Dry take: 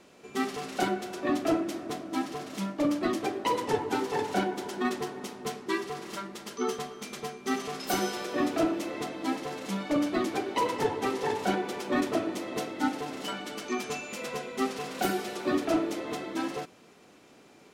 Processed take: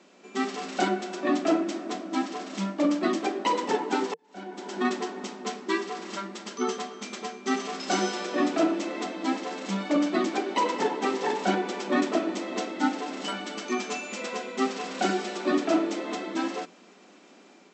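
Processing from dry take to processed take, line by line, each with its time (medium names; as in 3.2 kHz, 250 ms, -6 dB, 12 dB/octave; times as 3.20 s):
4.14–4.79 s: fade in quadratic
whole clip: FFT band-pass 170–8100 Hz; band-stop 460 Hz, Q 12; level rider gain up to 3 dB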